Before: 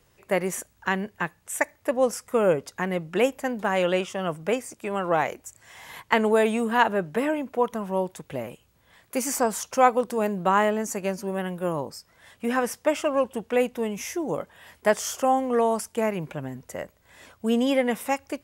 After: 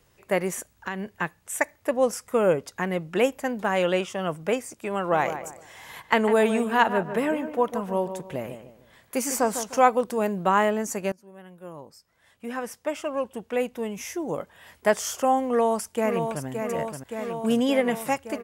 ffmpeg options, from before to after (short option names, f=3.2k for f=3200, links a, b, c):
-filter_complex "[0:a]asettb=1/sr,asplit=3[a][b][c];[a]atrim=end=0.504[d];[b]atrim=start=0.5:end=1.19,asetpts=PTS-STARTPTS,afade=t=in:d=0.004:c=qsin,afade=t=out:st=0.686:d=0.004:c=qsin,acompressor=threshold=-28dB:ratio=3:attack=3.2:release=140:knee=1:detection=peak[e];[c]atrim=start=1.186[f];[d][e]acrossfade=d=0.004:c1=hsin:c2=qsin[g];[g][f]acrossfade=d=0.004:c1=qsin:c2=hsin,asettb=1/sr,asplit=3[h][i][j];[h]atrim=end=4.974[k];[i]atrim=start=4.97:end=9.82,asetpts=PTS-STARTPTS,afade=t=in:d=0.004:c=qsin,afade=t=out:st=4.846:d=0.004:c=qsin,asplit=2[l][m];[m]adelay=151,lowpass=f=2k:p=1,volume=-9.5dB,asplit=2[n][o];[o]adelay=151,lowpass=f=2k:p=1,volume=0.34,asplit=2[p][q];[q]adelay=151,lowpass=f=2k:p=1,volume=0.34,asplit=2[r][s];[s]adelay=151,lowpass=f=2k:p=1,volume=0.34[t];[l][n][p][r][t]amix=inputs=5:normalize=0,atrim=end_sample=213885[u];[j]atrim=start=9.816[v];[k][u]acrossfade=d=0.004:c1=hsin:c2=qsin[w];[w][v]acrossfade=d=0.004:c1=qsin:c2=hsin,asplit=2[x][y];[y]afade=t=in:st=15.47:d=0.01,afade=t=out:st=16.46:d=0.01,aecho=0:1:570|1140|1710|2280|2850|3420|3990|4560|5130|5700|6270|6840:0.501187|0.37589|0.281918|0.211438|0.158579|0.118934|0.0892006|0.0669004|0.0501753|0.0376315|0.0282236|0.0211677[z];[x][z]amix=inputs=2:normalize=0,asplit=2[aa][ab];[aa]atrim=end=11.12,asetpts=PTS-STARTPTS,afade=t=out:st=11.116:d=0.004:c=hsin:silence=0.0707946[ac];[ab]atrim=start=11.12,asetpts=PTS-STARTPTS,afade=t=in:d=3.79:silence=0.0707946[ad];[ac][ad]concat=n=2:v=0:a=1"